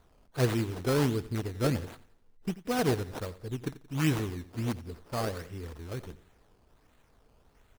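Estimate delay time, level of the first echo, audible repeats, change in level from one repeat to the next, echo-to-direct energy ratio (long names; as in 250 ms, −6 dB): 88 ms, −17.0 dB, 3, −8.0 dB, −16.5 dB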